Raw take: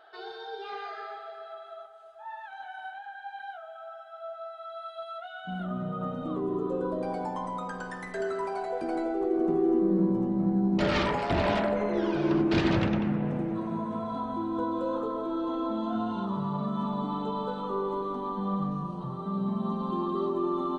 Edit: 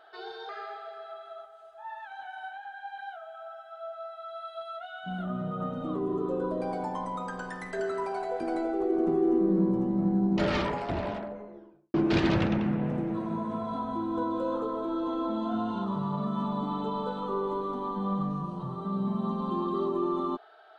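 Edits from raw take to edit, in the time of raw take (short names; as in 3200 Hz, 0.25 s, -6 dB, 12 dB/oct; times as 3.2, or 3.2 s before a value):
0.49–0.9 cut
10.56–12.35 studio fade out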